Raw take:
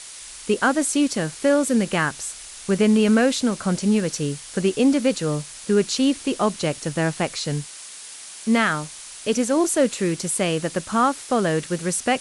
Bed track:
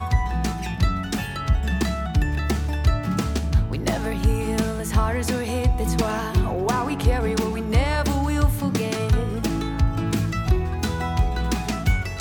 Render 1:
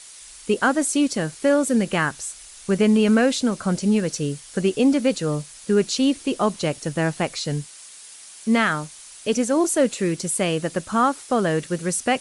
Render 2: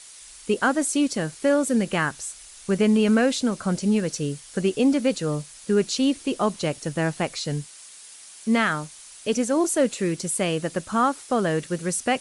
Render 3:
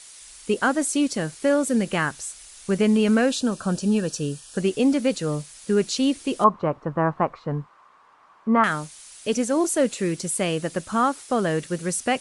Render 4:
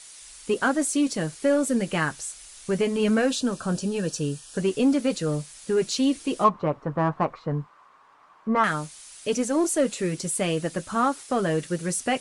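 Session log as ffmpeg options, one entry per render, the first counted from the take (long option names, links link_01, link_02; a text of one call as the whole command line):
ffmpeg -i in.wav -af "afftdn=noise_reduction=6:noise_floor=-39" out.wav
ffmpeg -i in.wav -af "volume=-2dB" out.wav
ffmpeg -i in.wav -filter_complex "[0:a]asettb=1/sr,asplit=3[link_01][link_02][link_03];[link_01]atrim=end=3.294[link_04];[link_02]atrim=start=3.29:end=4.58,asetpts=PTS-STARTPTS,afade=type=in:duration=0.004:curve=qsin,afade=type=out:start_time=1.286:duration=0.004:curve=qsin,asuperstop=centerf=2100:order=12:qfactor=4.7[link_05];[link_03]atrim=start=4.576[link_06];[link_04][link_05]acrossfade=duration=0.004:curve1=hsin:curve2=qsin[link_07];[link_07][link_06]acrossfade=duration=0.004:curve1=qsin:curve2=hsin,asettb=1/sr,asplit=3[link_08][link_09][link_10];[link_08]atrim=end=6.444[link_11];[link_09]atrim=start=6.44:end=8.64,asetpts=PTS-STARTPTS,afade=type=in:duration=0.004:curve=qsin,afade=type=out:start_time=2.196:duration=0.004:curve=qsin,lowpass=frequency=1100:width_type=q:width=5.2[link_12];[link_10]atrim=start=8.636[link_13];[link_11][link_12]acrossfade=duration=0.004:curve1=hsin:curve2=qsin[link_14];[link_14][link_13]acrossfade=duration=0.004:curve1=qsin:curve2=hsin" out.wav
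ffmpeg -i in.wav -filter_complex "[0:a]asplit=2[link_01][link_02];[link_02]asoftclip=type=tanh:threshold=-20.5dB,volume=-6dB[link_03];[link_01][link_03]amix=inputs=2:normalize=0,flanger=delay=6.2:depth=1.3:regen=-54:speed=0.94:shape=triangular" out.wav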